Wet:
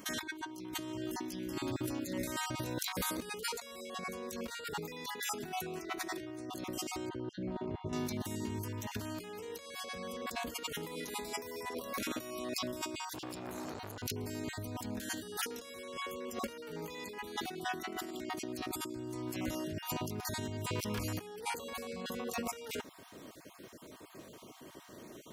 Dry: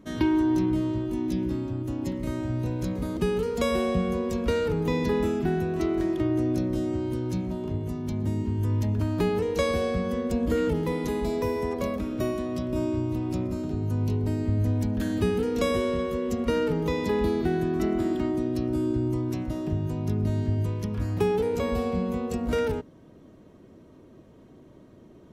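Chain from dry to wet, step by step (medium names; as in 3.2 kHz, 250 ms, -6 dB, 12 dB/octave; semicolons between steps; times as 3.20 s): random holes in the spectrogram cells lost 25%; tilt EQ +4 dB/octave; compressor with a negative ratio -41 dBFS, ratio -1; 7.09–7.93 s: tape spacing loss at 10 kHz 41 dB; 12.99–14.03 s: transformer saturation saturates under 1.3 kHz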